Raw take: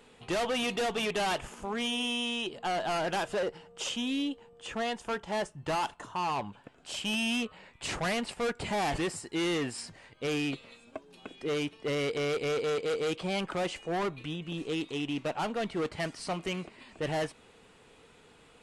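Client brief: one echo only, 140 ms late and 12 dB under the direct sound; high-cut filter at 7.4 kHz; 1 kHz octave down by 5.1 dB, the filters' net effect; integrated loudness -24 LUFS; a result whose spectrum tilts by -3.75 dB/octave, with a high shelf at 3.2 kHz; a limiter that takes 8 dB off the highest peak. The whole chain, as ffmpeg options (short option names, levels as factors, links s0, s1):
-af "lowpass=7400,equalizer=f=1000:t=o:g=-8,highshelf=f=3200:g=5,alimiter=level_in=1.88:limit=0.0631:level=0:latency=1,volume=0.531,aecho=1:1:140:0.251,volume=4.47"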